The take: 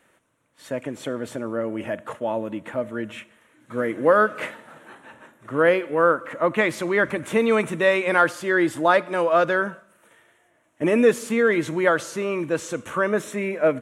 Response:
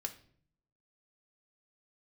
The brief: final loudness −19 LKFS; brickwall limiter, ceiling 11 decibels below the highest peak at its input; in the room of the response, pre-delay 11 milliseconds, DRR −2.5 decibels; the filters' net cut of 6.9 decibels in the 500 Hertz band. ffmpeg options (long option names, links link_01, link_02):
-filter_complex "[0:a]equalizer=frequency=500:width_type=o:gain=-8.5,alimiter=limit=-18dB:level=0:latency=1,asplit=2[link_01][link_02];[1:a]atrim=start_sample=2205,adelay=11[link_03];[link_02][link_03]afir=irnorm=-1:irlink=0,volume=3.5dB[link_04];[link_01][link_04]amix=inputs=2:normalize=0,volume=6.5dB"